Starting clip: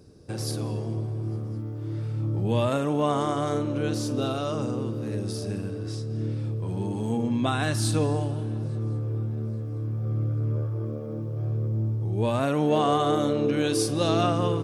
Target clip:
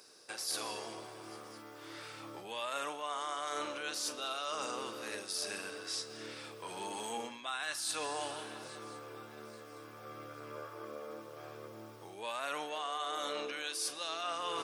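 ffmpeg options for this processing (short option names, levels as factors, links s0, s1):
-af "highpass=1200,areverse,acompressor=threshold=0.00794:ratio=20,areverse,volume=2.51"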